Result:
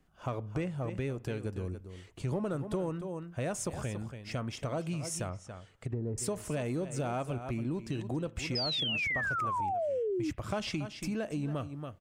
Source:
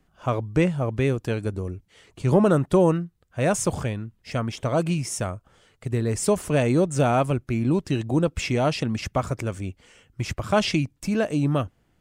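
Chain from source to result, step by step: echo 0.281 s -13.5 dB; on a send at -21 dB: reverb, pre-delay 32 ms; 5.27–6.18 on the sum: treble ducked by the level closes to 610 Hz, closed at -21.5 dBFS; in parallel at -11.5 dB: hard clip -22 dBFS, distortion -7 dB; 8.55–10.31 on the sum: painted sound fall 290–5200 Hz -17 dBFS; compressor 3:1, threshold -27 dBFS, peak gain reduction 11.5 dB; gain -6.5 dB

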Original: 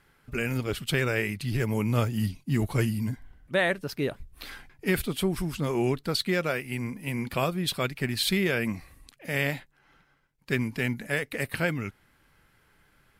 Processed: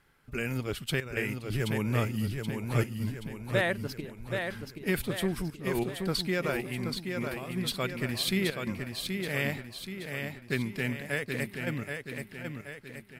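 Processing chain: step gate "xxxxxx.x." 90 bpm -12 dB; feedback echo 0.777 s, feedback 50%, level -5.5 dB; gain -3.5 dB

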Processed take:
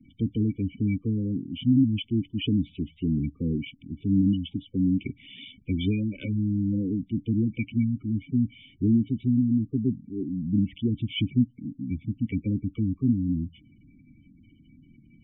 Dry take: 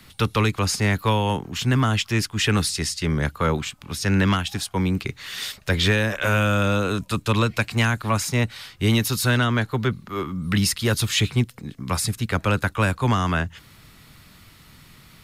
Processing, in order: vocal tract filter i; spectral gate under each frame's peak -15 dB strong; gain +6 dB

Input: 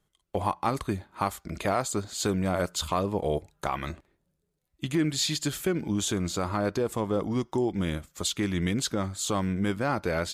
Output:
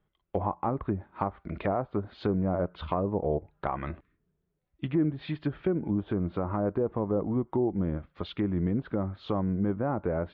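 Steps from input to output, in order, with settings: spectral repair 4.04–4.47, 340–1000 Hz after; Bessel low-pass 2100 Hz, order 8; treble ducked by the level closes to 890 Hz, closed at -25 dBFS

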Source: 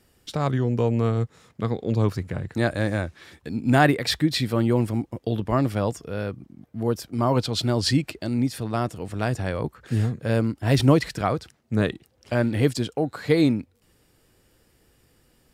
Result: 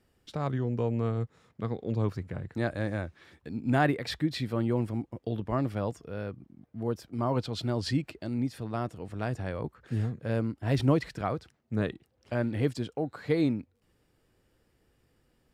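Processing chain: high shelf 4200 Hz -9 dB; gain -7 dB

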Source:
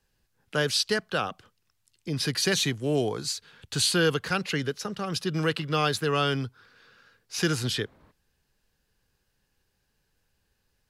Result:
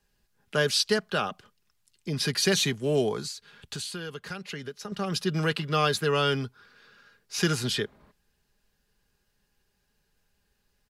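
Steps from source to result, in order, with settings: comb 4.9 ms, depth 37%; 3.25–4.92 compressor 5:1, threshold -35 dBFS, peak gain reduction 14.5 dB

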